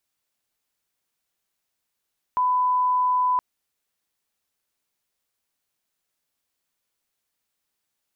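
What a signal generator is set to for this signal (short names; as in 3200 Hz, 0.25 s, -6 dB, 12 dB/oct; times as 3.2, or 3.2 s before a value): line-up tone -18 dBFS 1.02 s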